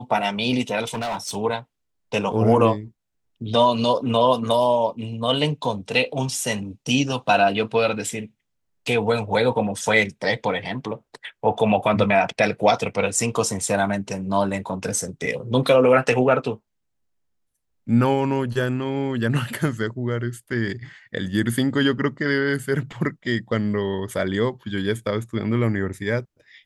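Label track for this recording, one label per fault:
0.870000	1.360000	clipped -23.5 dBFS

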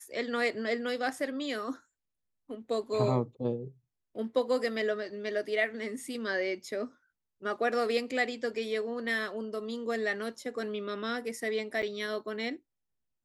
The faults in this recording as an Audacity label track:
11.820000	11.830000	gap 8.2 ms

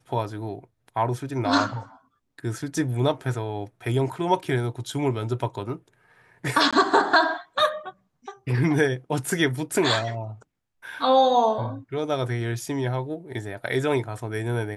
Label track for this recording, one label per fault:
6.710000	6.730000	gap 16 ms

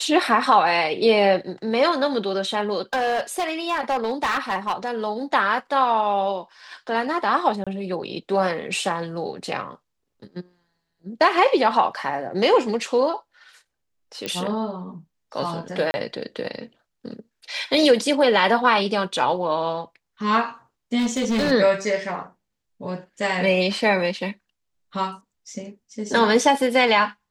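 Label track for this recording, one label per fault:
2.930000	5.070000	clipped -18 dBFS
7.640000	7.670000	gap 26 ms
14.260000	14.260000	pop -13 dBFS
15.910000	15.940000	gap 30 ms
20.980000	21.520000	clipped -18 dBFS

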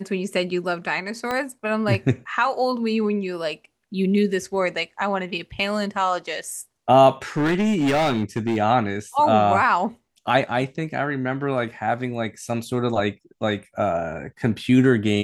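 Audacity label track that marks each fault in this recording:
1.310000	1.310000	pop -13 dBFS
7.370000	8.580000	clipped -17 dBFS

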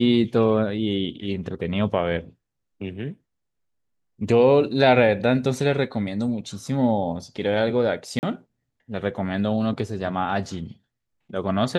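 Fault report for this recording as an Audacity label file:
8.190000	8.230000	gap 39 ms

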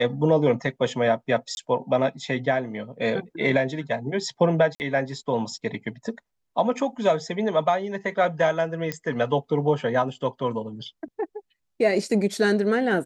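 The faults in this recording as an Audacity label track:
1.550000	1.570000	gap 21 ms
4.750000	4.800000	gap 49 ms
8.920000	8.920000	pop -13 dBFS

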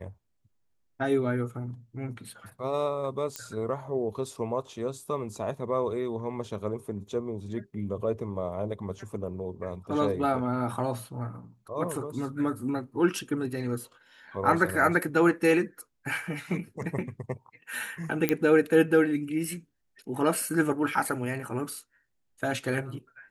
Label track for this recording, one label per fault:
3.360000	3.360000	pop -16 dBFS
18.290000	18.290000	pop -9 dBFS

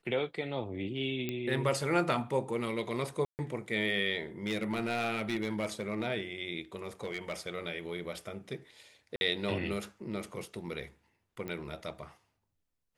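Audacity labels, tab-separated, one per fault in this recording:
1.290000	1.290000	pop -20 dBFS
3.250000	3.390000	gap 0.139 s
4.460000	6.060000	clipped -27 dBFS
6.840000	7.480000	clipped -30.5 dBFS
9.160000	9.210000	gap 51 ms
11.480000	11.480000	pop -26 dBFS

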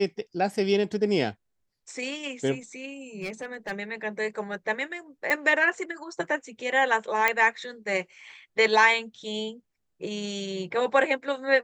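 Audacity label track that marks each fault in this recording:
3.210000	3.720000	clipped -28.5 dBFS
5.300000	5.300000	pop -12 dBFS
7.280000	7.280000	pop -8 dBFS

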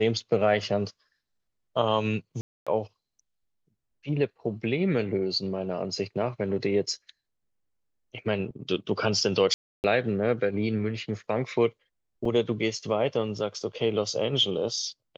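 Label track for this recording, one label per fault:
2.410000	2.670000	gap 0.256 s
9.540000	9.840000	gap 0.299 s
12.250000	12.250000	gap 3.5 ms

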